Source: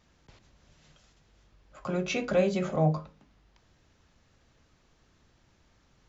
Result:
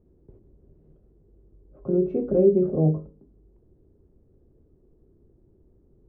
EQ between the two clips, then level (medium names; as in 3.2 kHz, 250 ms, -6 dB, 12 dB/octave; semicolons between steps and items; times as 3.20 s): resonant low-pass 390 Hz, resonance Q 4.8; bass shelf 120 Hz +8.5 dB; 0.0 dB